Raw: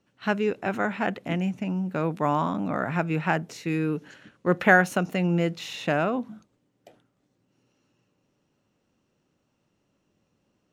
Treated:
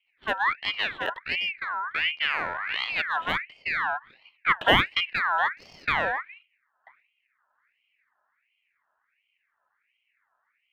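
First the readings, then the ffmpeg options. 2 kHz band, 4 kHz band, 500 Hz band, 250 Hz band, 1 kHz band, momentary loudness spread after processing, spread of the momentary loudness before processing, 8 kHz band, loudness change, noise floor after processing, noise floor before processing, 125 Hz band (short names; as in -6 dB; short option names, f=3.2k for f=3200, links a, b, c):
+2.5 dB, +12.0 dB, -8.0 dB, -14.5 dB, +0.5 dB, 10 LU, 10 LU, under -10 dB, 0.0 dB, -76 dBFS, -73 dBFS, -14.0 dB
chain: -af "adynamicsmooth=sensitivity=4:basefreq=940,equalizer=f=125:t=o:w=1:g=5,equalizer=f=250:t=o:w=1:g=-5,equalizer=f=500:t=o:w=1:g=9,equalizer=f=1k:t=o:w=1:g=-11,equalizer=f=2k:t=o:w=1:g=6,equalizer=f=4k:t=o:w=1:g=-9,equalizer=f=8k:t=o:w=1:g=-12,aeval=exprs='val(0)*sin(2*PI*1900*n/s+1900*0.4/1.4*sin(2*PI*1.4*n/s))':c=same"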